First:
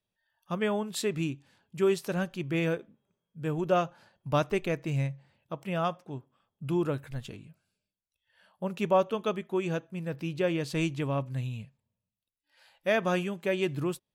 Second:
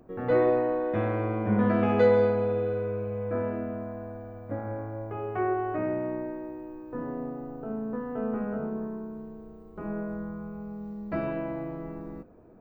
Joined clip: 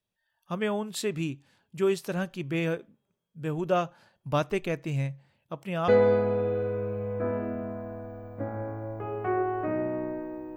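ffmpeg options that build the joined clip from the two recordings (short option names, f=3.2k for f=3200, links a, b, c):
-filter_complex "[0:a]apad=whole_dur=10.56,atrim=end=10.56,atrim=end=5.882[a];[1:a]atrim=start=1.988:end=6.67[b];[a][b]acrossfade=d=0.004:c1=hsin:c2=hsin"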